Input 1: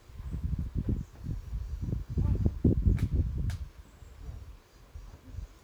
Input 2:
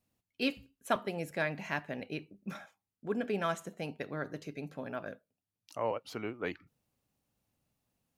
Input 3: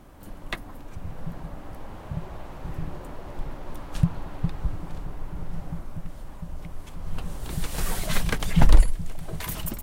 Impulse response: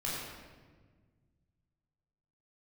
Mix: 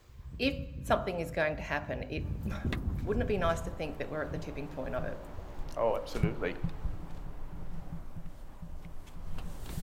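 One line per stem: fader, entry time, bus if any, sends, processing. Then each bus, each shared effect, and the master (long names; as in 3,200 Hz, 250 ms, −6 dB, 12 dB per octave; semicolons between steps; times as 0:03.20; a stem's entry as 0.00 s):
−3.0 dB, 0.00 s, send −17 dB, automatic ducking −8 dB, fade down 0.45 s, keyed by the second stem
+0.5 dB, 0.00 s, send −22.5 dB, parametric band 590 Hz +4.5 dB 0.77 octaves
−7.5 dB, 2.20 s, no send, no processing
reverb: on, RT60 1.5 s, pre-delay 14 ms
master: parametric band 10,000 Hz −4 dB 0.25 octaves; hum removal 50.12 Hz, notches 30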